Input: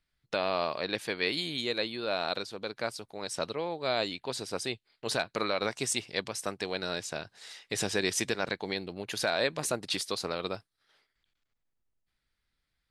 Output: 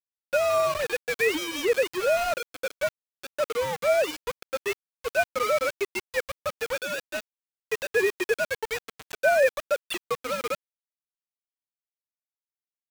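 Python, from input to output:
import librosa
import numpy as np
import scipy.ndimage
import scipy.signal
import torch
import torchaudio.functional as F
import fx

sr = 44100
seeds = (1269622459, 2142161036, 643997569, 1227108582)

y = fx.sine_speech(x, sr)
y = np.where(np.abs(y) >= 10.0 ** (-34.0 / 20.0), y, 0.0)
y = F.gain(torch.from_numpy(y), 6.5).numpy()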